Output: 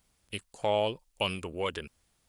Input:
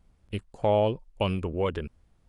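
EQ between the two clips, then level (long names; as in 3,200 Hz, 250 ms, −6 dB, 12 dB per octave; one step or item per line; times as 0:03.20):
spectral tilt +2.5 dB per octave
high-shelf EQ 2,700 Hz +7 dB
−3.0 dB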